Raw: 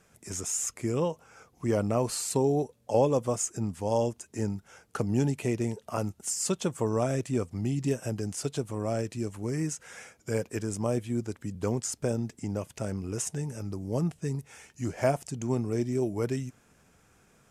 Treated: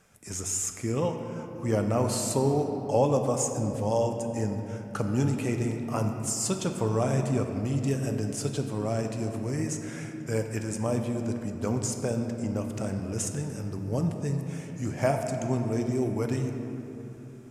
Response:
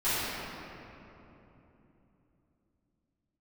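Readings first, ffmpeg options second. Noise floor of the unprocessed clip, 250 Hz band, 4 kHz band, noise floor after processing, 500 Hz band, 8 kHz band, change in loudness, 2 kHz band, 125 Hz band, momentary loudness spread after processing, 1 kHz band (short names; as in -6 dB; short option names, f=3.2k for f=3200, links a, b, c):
-64 dBFS, +2.0 dB, +1.5 dB, -41 dBFS, +1.0 dB, +1.0 dB, +1.5 dB, +2.0 dB, +3.0 dB, 9 LU, +2.5 dB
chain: -filter_complex "[0:a]equalizer=f=380:w=4:g=-4,asplit=2[a][b];[1:a]atrim=start_sample=2205[c];[b][c]afir=irnorm=-1:irlink=0,volume=-16dB[d];[a][d]amix=inputs=2:normalize=0"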